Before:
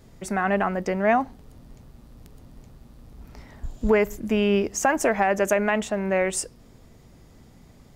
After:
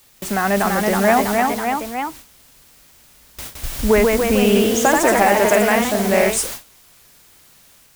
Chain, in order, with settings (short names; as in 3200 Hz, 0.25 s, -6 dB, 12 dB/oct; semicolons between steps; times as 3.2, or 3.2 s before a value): requantised 6-bit, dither triangular; gate with hold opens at -26 dBFS; echoes that change speed 0.357 s, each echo +1 st, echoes 3; gain +4.5 dB